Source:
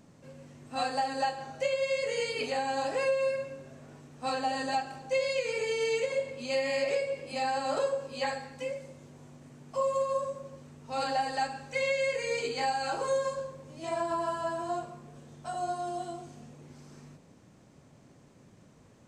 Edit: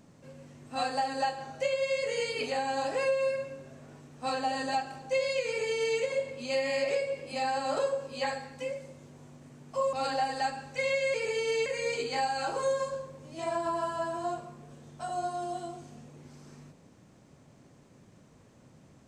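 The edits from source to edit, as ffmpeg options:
-filter_complex "[0:a]asplit=4[s0][s1][s2][s3];[s0]atrim=end=9.932[s4];[s1]atrim=start=10.898:end=12.112[s5];[s2]atrim=start=5.468:end=5.992[s6];[s3]atrim=start=12.108[s7];[s4][s5]acrossfade=d=0.004:c1=hsin:c2=hsin[s8];[s8][s6]acrossfade=d=0.004:c1=hsin:c2=hsin[s9];[s9][s7]acrossfade=d=0.004:c1=hsin:c2=hsin"

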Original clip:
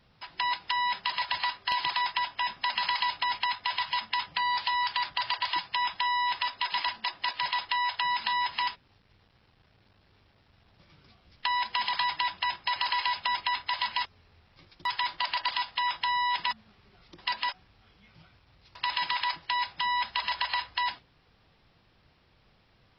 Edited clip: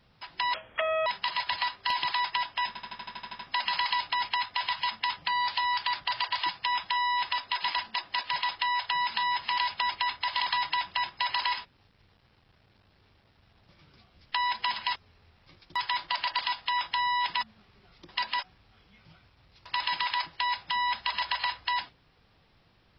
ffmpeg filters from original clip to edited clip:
-filter_complex "[0:a]asplit=16[s0][s1][s2][s3][s4][s5][s6][s7][s8][s9][s10][s11][s12][s13][s14][s15];[s0]atrim=end=0.544[s16];[s1]atrim=start=0.54:end=0.88,asetpts=PTS-STARTPTS,asetrate=28665,aresample=44100[s17];[s2]atrim=start=0.876:end=2.572[s18];[s3]atrim=start=2.488:end=2.572[s19];[s4]atrim=start=2.488:end=2.572[s20];[s5]atrim=start=2.488:end=2.572[s21];[s6]atrim=start=2.488:end=2.572[s22];[s7]atrim=start=2.488:end=2.572[s23];[s8]atrim=start=2.488:end=2.572[s24];[s9]atrim=start=2.488:end=2.572[s25];[s10]atrim=start=2.488:end=2.572[s26];[s11]atrim=start=2.488:end=8.682[s27];[s12]atrim=start=13.038:end=13.862[s28];[s13]atrim=start=11.868:end=13.042[s29];[s14]atrim=start=8.678:end=11.872[s30];[s15]atrim=start=13.858[s31];[s16][s17]acrossfade=d=0.004:c1=hsin:c2=hsin[s32];[s32][s18]acrossfade=d=0.004:c1=hsin:c2=hsin[s33];[s33][s19]acrossfade=d=0.004:c1=hsin:c2=hsin[s34];[s34][s20]acrossfade=d=0.004:c1=hsin:c2=hsin[s35];[s35][s21]acrossfade=d=0.004:c1=hsin:c2=hsin[s36];[s36][s22]acrossfade=d=0.004:c1=hsin:c2=hsin[s37];[s37][s23]acrossfade=d=0.004:c1=hsin:c2=hsin[s38];[s38][s24]acrossfade=d=0.004:c1=hsin:c2=hsin[s39];[s39][s25]acrossfade=d=0.004:c1=hsin:c2=hsin[s40];[s40][s26]acrossfade=d=0.004:c1=hsin:c2=hsin[s41];[s41][s27]acrossfade=d=0.004:c1=hsin:c2=hsin[s42];[s42][s28]acrossfade=d=0.004:c1=hsin:c2=hsin[s43];[s43][s29]acrossfade=d=0.004:c1=hsin:c2=hsin[s44];[s44][s30]acrossfade=d=0.004:c1=hsin:c2=hsin[s45];[s45][s31]acrossfade=d=0.004:c1=hsin:c2=hsin"

